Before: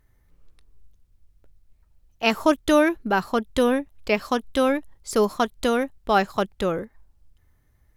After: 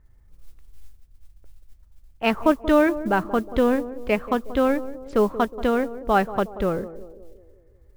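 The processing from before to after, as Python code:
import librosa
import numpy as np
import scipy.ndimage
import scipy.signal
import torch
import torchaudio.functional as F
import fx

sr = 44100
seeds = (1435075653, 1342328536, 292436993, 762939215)

p1 = fx.wiener(x, sr, points=9)
p2 = scipy.signal.sosfilt(scipy.signal.butter(2, 2700.0, 'lowpass', fs=sr, output='sos'), p1)
p3 = fx.low_shelf(p2, sr, hz=99.0, db=9.0)
p4 = fx.mod_noise(p3, sr, seeds[0], snr_db=29)
y = p4 + fx.echo_banded(p4, sr, ms=182, feedback_pct=56, hz=410.0, wet_db=-13, dry=0)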